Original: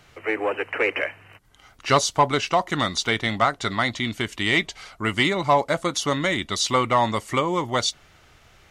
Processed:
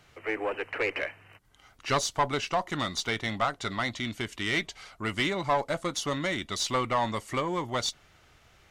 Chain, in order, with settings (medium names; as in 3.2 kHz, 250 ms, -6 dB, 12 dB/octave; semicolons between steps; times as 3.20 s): single-diode clipper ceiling -13.5 dBFS; trim -5.5 dB